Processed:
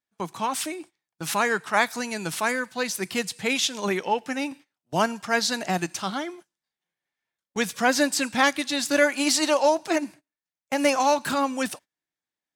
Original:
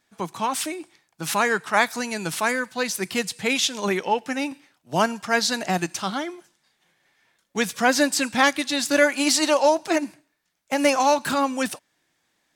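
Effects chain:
noise gate −42 dBFS, range −20 dB
level −2 dB

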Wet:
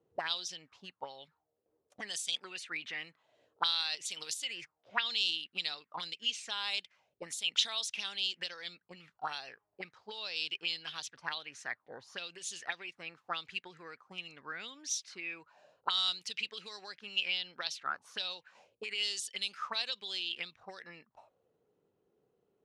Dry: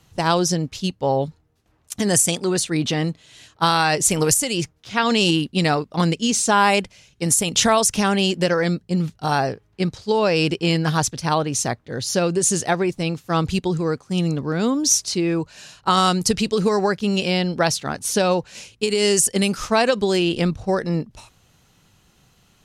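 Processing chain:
envelope filter 420–3,700 Hz, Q 5.1, up, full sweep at −15 dBFS
level −2.5 dB

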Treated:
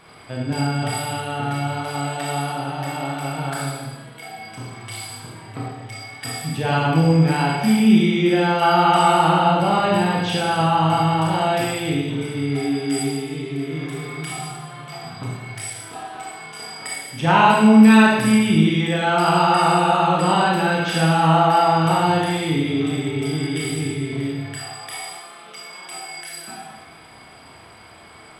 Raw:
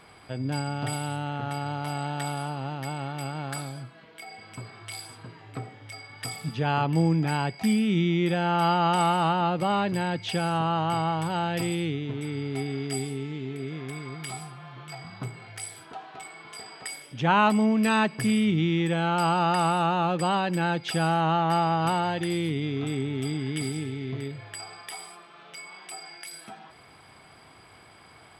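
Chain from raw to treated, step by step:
four-comb reverb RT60 1.1 s, combs from 25 ms, DRR −4 dB
level +2.5 dB

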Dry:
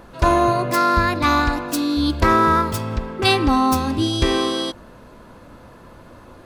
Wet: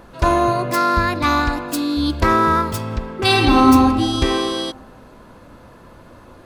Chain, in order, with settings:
0:01.50–0:02.06: notch filter 5,800 Hz, Q 12
0:03.26–0:03.67: thrown reverb, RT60 2 s, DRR −3 dB

